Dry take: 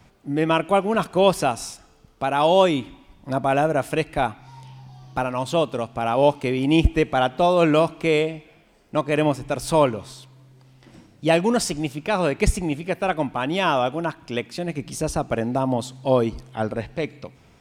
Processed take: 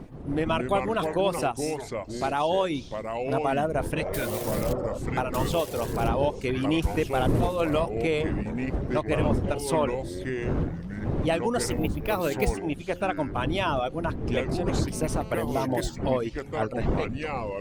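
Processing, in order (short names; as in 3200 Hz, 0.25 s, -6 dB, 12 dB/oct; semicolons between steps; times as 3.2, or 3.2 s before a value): 4.14–4.73 switching spikes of -19 dBFS; wind noise 280 Hz -25 dBFS; 11.71–12.56 careless resampling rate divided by 3×, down none, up hold; dynamic EQ 220 Hz, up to -4 dB, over -38 dBFS, Q 2.5; 3.98–4.95 spectral repair 470–1400 Hz before; reverb removal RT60 0.56 s; 0.6–1.06 bell 3500 Hz +9.5 dB 0.21 oct; de-hum 177.6 Hz, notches 3; compressor 2.5:1, threshold -21 dBFS, peak gain reduction 9.5 dB; echoes that change speed 0.124 s, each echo -4 st, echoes 2, each echo -6 dB; 14.92–15.34 GSM buzz -43 dBFS; gain -2 dB; Opus 32 kbps 48000 Hz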